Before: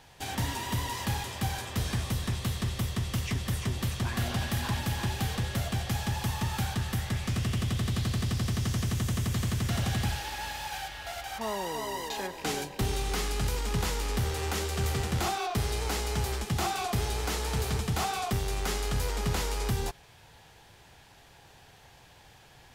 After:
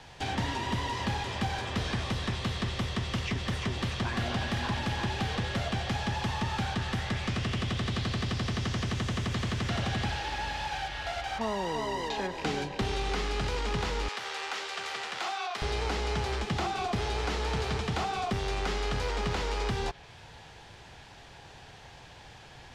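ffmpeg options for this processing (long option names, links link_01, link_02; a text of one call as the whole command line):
ffmpeg -i in.wav -filter_complex "[0:a]asettb=1/sr,asplit=3[link_01][link_02][link_03];[link_01]atrim=end=14.084[link_04];[link_02]atrim=start=14.08:end=15.62,asetpts=PTS-STARTPTS,afade=type=in:duration=0.004:curve=qsin,afade=type=out:start_time=1.536:duration=0.004:curve=qsin,highpass=940[link_05];[link_03]atrim=start=15.616[link_06];[link_04][link_05]acrossfade=duration=0.004:curve1=hsin:curve2=qsin[link_07];[link_07][link_06]acrossfade=duration=0.004:curve1=qsin:curve2=hsin,lowpass=6300,acrossover=split=280|590|5000[link_08][link_09][link_10][link_11];[link_08]acompressor=threshold=-38dB:ratio=4[link_12];[link_09]acompressor=threshold=-43dB:ratio=4[link_13];[link_10]acompressor=threshold=-39dB:ratio=4[link_14];[link_11]acompressor=threshold=-60dB:ratio=4[link_15];[link_12][link_13][link_14][link_15]amix=inputs=4:normalize=0,volume=5.5dB" out.wav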